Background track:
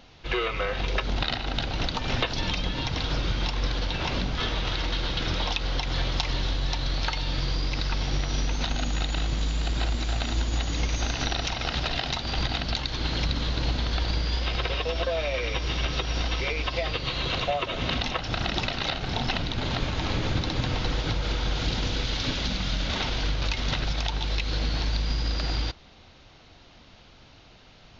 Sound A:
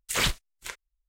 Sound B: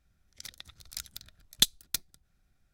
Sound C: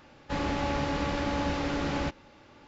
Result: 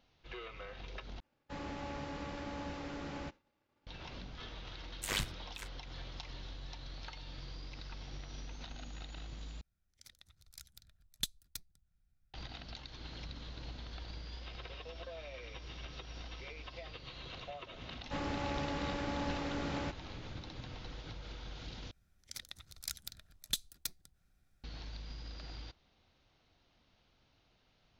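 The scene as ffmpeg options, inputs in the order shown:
ffmpeg -i bed.wav -i cue0.wav -i cue1.wav -i cue2.wav -filter_complex "[3:a]asplit=2[link_01][link_02];[2:a]asplit=2[link_03][link_04];[0:a]volume=-19.5dB[link_05];[link_01]agate=range=-33dB:threshold=-47dB:ratio=3:release=100:detection=peak[link_06];[1:a]tremolo=f=100:d=0.919[link_07];[link_03]asubboost=boost=4:cutoff=200[link_08];[link_04]alimiter=level_in=15dB:limit=-1dB:release=50:level=0:latency=1[link_09];[link_05]asplit=4[link_10][link_11][link_12][link_13];[link_10]atrim=end=1.204[link_14];[link_06]atrim=end=2.67,asetpts=PTS-STARTPTS,volume=-13dB[link_15];[link_11]atrim=start=3.866:end=9.614[link_16];[link_08]atrim=end=2.73,asetpts=PTS-STARTPTS,volume=-14dB[link_17];[link_12]atrim=start=12.336:end=21.914[link_18];[link_09]atrim=end=2.73,asetpts=PTS-STARTPTS,volume=-17dB[link_19];[link_13]atrim=start=24.636[link_20];[link_07]atrim=end=1.08,asetpts=PTS-STARTPTS,volume=-6.5dB,afade=type=in:duration=0.004:curve=hsin,afade=type=out:start_time=1.076:duration=0.004:curve=hsin,adelay=217413S[link_21];[link_02]atrim=end=2.67,asetpts=PTS-STARTPTS,volume=-8dB,afade=type=in:duration=0.004:curve=hsin,afade=type=out:start_time=2.666:duration=0.004:curve=hsin,adelay=17810[link_22];[link_14][link_15]acrossfade=duration=0.004:curve1=hsin:curve2=hsin[link_23];[link_23][link_16]acrossfade=duration=0.004:curve1=hsin:curve2=hsin[link_24];[link_24][link_17]acrossfade=duration=0.004:curve1=hsin:curve2=hsin[link_25];[link_25][link_18]acrossfade=duration=0.004:curve1=hsin:curve2=hsin[link_26];[link_26][link_19]acrossfade=duration=0.004:curve1=hsin:curve2=hsin[link_27];[link_27][link_20]acrossfade=duration=0.004:curve1=hsin:curve2=hsin[link_28];[link_28][link_21][link_22]amix=inputs=3:normalize=0" out.wav

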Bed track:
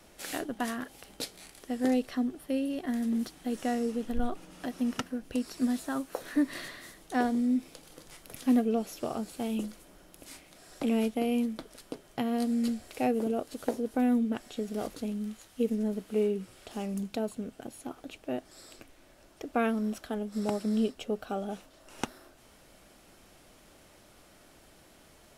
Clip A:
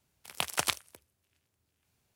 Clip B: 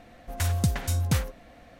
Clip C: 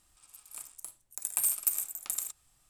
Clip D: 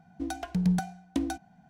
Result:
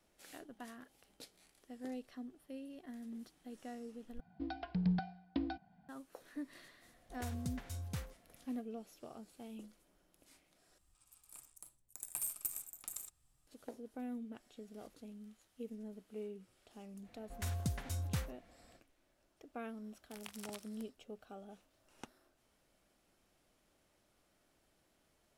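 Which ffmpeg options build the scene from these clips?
ffmpeg -i bed.wav -i cue0.wav -i cue1.wav -i cue2.wav -i cue3.wav -filter_complex "[2:a]asplit=2[link_01][link_02];[0:a]volume=-17.5dB[link_03];[4:a]aresample=11025,aresample=44100[link_04];[3:a]lowshelf=frequency=390:gain=9.5[link_05];[1:a]acompressor=threshold=-40dB:ratio=6:attack=3.2:release=140:knee=1:detection=peak[link_06];[link_03]asplit=3[link_07][link_08][link_09];[link_07]atrim=end=4.204[link_10];[link_04]atrim=end=1.69,asetpts=PTS-STARTPTS,volume=-8dB[link_11];[link_08]atrim=start=5.886:end=10.784[link_12];[link_05]atrim=end=2.69,asetpts=PTS-STARTPTS,volume=-11.5dB[link_13];[link_09]atrim=start=13.466[link_14];[link_01]atrim=end=1.79,asetpts=PTS-STARTPTS,volume=-17.5dB,afade=type=in:duration=0.004:curve=hsin,afade=type=out:start_time=1.786:duration=0.004:curve=hsin,adelay=300762S[link_15];[link_02]atrim=end=1.79,asetpts=PTS-STARTPTS,volume=-13dB,afade=type=in:duration=0.05,afade=type=out:start_time=1.74:duration=0.05,adelay=17020[link_16];[link_06]atrim=end=2.15,asetpts=PTS-STARTPTS,volume=-6.5dB,afade=type=in:duration=0.004:curve=hsin,afade=type=out:start_time=2.146:duration=0.004:curve=hsin,adelay=19860[link_17];[link_10][link_11]acrossfade=duration=0.004:curve1=hsin:curve2=hsin[link_18];[link_18][link_12]acrossfade=duration=0.004:curve1=hsin:curve2=hsin[link_19];[link_19][link_13]acrossfade=duration=0.004:curve1=hsin:curve2=hsin[link_20];[link_20][link_14]acrossfade=duration=0.004:curve1=hsin:curve2=hsin[link_21];[link_21][link_15][link_16][link_17]amix=inputs=4:normalize=0" out.wav

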